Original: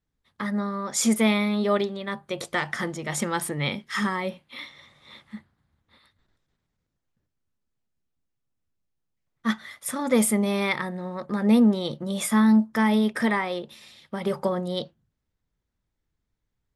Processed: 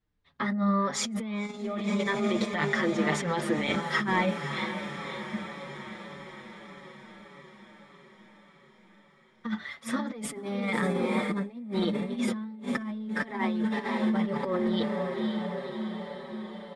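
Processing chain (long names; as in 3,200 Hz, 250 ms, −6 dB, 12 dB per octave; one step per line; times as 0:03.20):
on a send: feedback delay with all-pass diffusion 517 ms, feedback 69%, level −10 dB
on the sum: dynamic equaliser 260 Hz, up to +6 dB, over −34 dBFS, Q 1.6
low-pass filter 4,300 Hz 12 dB per octave
compressor whose output falls as the input rises −27 dBFS, ratio −1
barber-pole flanger 6 ms −1.7 Hz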